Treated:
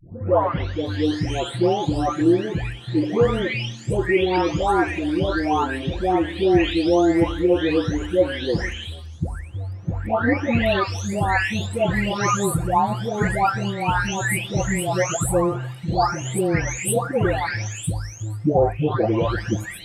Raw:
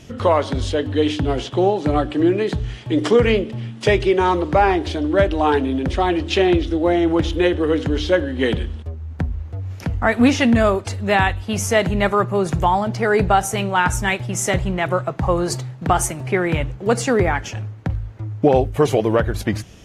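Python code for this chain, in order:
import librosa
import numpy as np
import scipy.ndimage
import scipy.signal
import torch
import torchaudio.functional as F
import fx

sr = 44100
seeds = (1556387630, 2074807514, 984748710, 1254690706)

y = fx.spec_delay(x, sr, highs='late', ms=862)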